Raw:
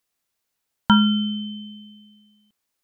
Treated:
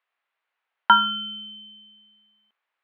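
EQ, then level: BPF 720–2800 Hz; air absorption 480 m; tilt +2.5 dB/oct; +8.5 dB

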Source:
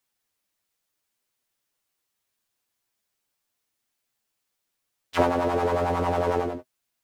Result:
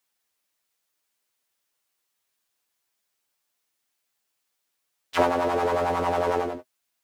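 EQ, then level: low shelf 260 Hz -9 dB; +2.0 dB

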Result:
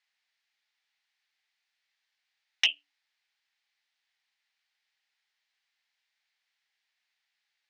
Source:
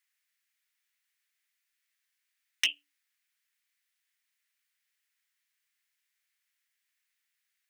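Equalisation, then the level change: HPF 330 Hz; synth low-pass 4400 Hz, resonance Q 1.7; bell 800 Hz +12.5 dB 0.54 oct; 0.0 dB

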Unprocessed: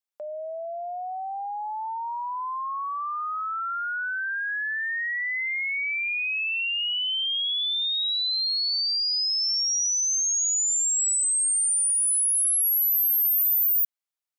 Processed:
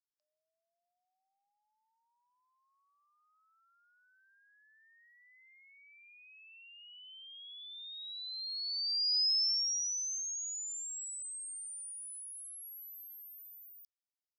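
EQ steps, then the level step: ladder band-pass 5400 Hz, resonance 75%; -6.5 dB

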